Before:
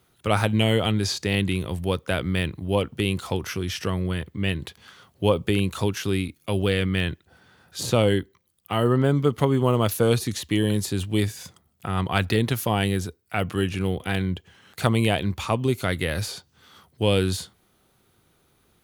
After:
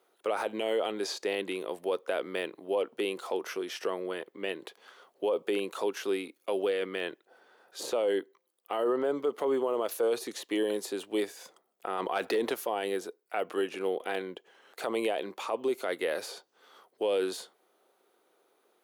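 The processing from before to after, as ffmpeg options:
-filter_complex "[0:a]asettb=1/sr,asplit=3[a][b][c];[a]atrim=end=11.984[d];[b]atrim=start=11.98:end=12.54,asetpts=PTS-STARTPTS,afade=t=in:d=0.004:c=qsin,afade=t=out:st=0.556:d=0.004:c=qsin,acontrast=67[e];[c]atrim=start=12.536[f];[d][e]acrossfade=d=0.004:c1=hsin:c2=qsin[g];[g][f]acrossfade=d=0.004:c1=qsin:c2=hsin,highpass=f=420:w=0.5412,highpass=f=420:w=1.3066,tiltshelf=f=970:g=7.5,alimiter=limit=-18.5dB:level=0:latency=1:release=37,volume=-2dB"

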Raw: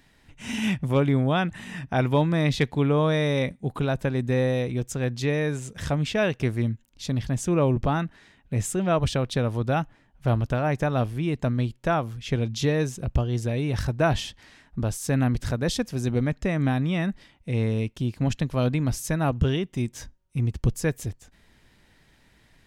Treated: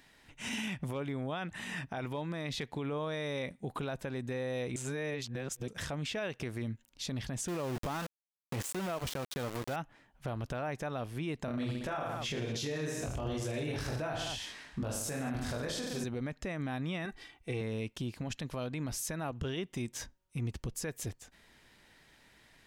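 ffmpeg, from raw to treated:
-filter_complex "[0:a]asettb=1/sr,asplit=3[a][b][c];[a]atrim=end=7.484[d];[b]atrim=start=7.48:end=9.76,asetpts=PTS-STARTPTS,afade=t=in:d=0.004:c=qsin,afade=t=out:st=2.276:d=0.004:c=qsin,aeval=exprs='val(0)*gte(abs(val(0)),0.0376)':c=same[e];[c]atrim=start=9.756[f];[d][e]acrossfade=d=0.004:c1=hsin:c2=qsin[g];[g][f]acrossfade=d=0.004:c1=qsin:c2=hsin,asettb=1/sr,asplit=3[h][i][j];[h]atrim=end=11.464[k];[i]atrim=start=11.46:end=16.04,asetpts=PTS-STARTPTS,afade=t=in:d=0.004:c=qsin,afade=t=out:st=4.576:d=0.004:c=qsin,aecho=1:1:20|45|76.25|115.3|164.1|225.2:0.794|0.631|0.501|0.398|0.316|0.251,atrim=end_sample=201978[l];[j]atrim=start=16.036[m];[k][l]acrossfade=d=0.004:c1=hsin:c2=qsin[n];[n][m]acrossfade=d=0.004:c1=qsin:c2=hsin,asettb=1/sr,asplit=3[o][p][q];[o]atrim=end=17.054[r];[p]atrim=start=17.05:end=17.61,asetpts=PTS-STARTPTS,afade=t=in:d=0.004:c=qsin,afade=t=out:st=0.556:d=0.004:c=qsin,aecho=1:1:2.6:0.65,atrim=end_sample=24696[s];[q]atrim=start=17.606[t];[r][s]acrossfade=d=0.004:c1=hsin:c2=qsin[u];[u][t]acrossfade=d=0.004:c1=qsin:c2=hsin,asplit=3[v][w][x];[v]atrim=end=4.762[y];[w]atrim=start=4.758:end=5.682,asetpts=PTS-STARTPTS,areverse[z];[x]atrim=start=5.678[aa];[y][z]acrossfade=d=0.004:c1=hsin:c2=hsin[ab];[ab][aa]acrossfade=d=0.004:c1=hsin:c2=hsin,lowshelf=f=240:g=-10,acompressor=threshold=-30dB:ratio=6,alimiter=level_in=4dB:limit=-24dB:level=0:latency=1:release=36,volume=-4dB"

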